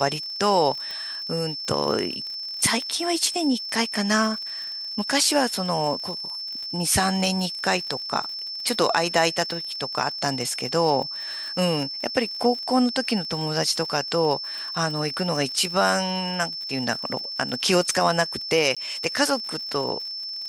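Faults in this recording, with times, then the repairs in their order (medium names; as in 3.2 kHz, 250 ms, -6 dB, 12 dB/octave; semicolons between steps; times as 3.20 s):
crackle 55 per s -32 dBFS
whine 5.3 kHz -30 dBFS
0.91 s: pop -19 dBFS
18.75–18.77 s: dropout 16 ms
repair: de-click; band-stop 5.3 kHz, Q 30; interpolate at 18.75 s, 16 ms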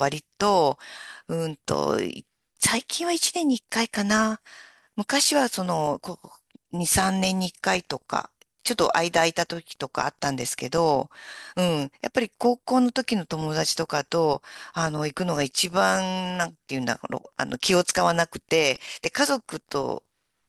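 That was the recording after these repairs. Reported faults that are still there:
nothing left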